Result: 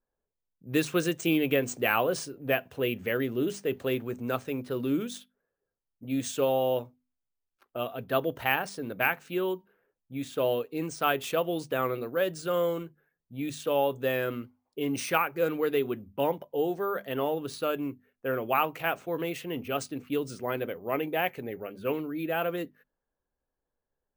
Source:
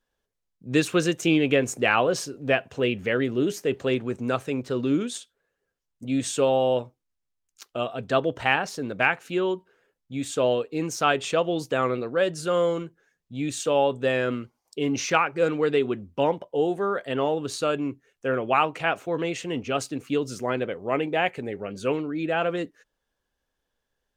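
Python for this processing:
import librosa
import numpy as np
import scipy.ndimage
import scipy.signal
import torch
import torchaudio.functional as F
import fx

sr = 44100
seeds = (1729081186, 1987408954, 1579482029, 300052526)

y = fx.env_lowpass(x, sr, base_hz=1100.0, full_db=-22.0)
y = fx.hum_notches(y, sr, base_hz=50, count=5)
y = np.repeat(y[::3], 3)[:len(y)]
y = F.gain(torch.from_numpy(y), -4.5).numpy()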